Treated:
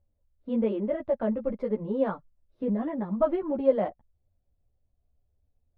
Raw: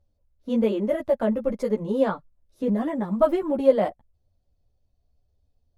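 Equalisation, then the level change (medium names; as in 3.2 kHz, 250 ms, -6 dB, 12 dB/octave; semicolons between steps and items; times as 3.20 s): distance through air 390 m; -3.5 dB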